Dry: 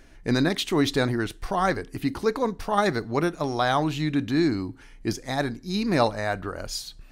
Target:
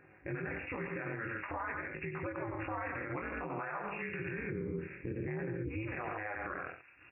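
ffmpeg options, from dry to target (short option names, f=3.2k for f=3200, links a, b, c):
-filter_complex "[0:a]acrossover=split=1400[a][b];[a]aecho=1:1:4.5:0.49[c];[b]dynaudnorm=f=200:g=3:m=13.5dB[d];[c][d]amix=inputs=2:normalize=0,flanger=delay=18.5:depth=6.6:speed=0.51,asplit=3[e][f][g];[e]afade=t=out:st=4.5:d=0.02[h];[f]lowshelf=f=500:t=q:w=1.5:g=13,afade=t=in:st=4.5:d=0.02,afade=t=out:st=5.68:d=0.02[i];[g]afade=t=in:st=5.68:d=0.02[j];[h][i][j]amix=inputs=3:normalize=0,aecho=1:1:90.38|137:0.398|0.282,acompressor=threshold=-29dB:ratio=6,afftfilt=real='re*between(b*sr/4096,170,2700)':imag='im*between(b*sr/4096,170,2700)':win_size=4096:overlap=0.75,aeval=exprs='val(0)*sin(2*PI*110*n/s)':c=same,alimiter=level_in=6.5dB:limit=-24dB:level=0:latency=1:release=58,volume=-6.5dB,volume=1.5dB"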